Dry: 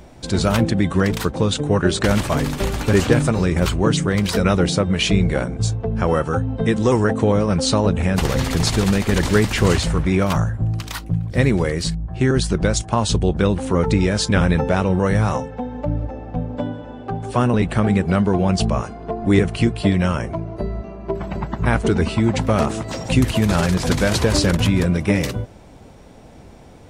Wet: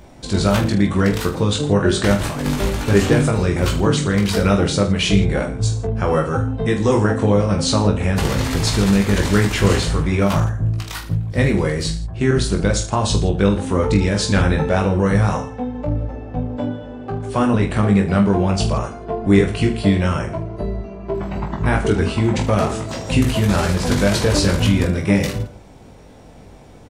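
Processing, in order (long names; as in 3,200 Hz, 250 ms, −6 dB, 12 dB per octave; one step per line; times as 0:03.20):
0:02.15–0:02.61: compressor whose output falls as the input rises −22 dBFS, ratio −0.5
on a send: reverse bouncing-ball delay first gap 20 ms, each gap 1.25×, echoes 5
on the sum: level −1.5 dB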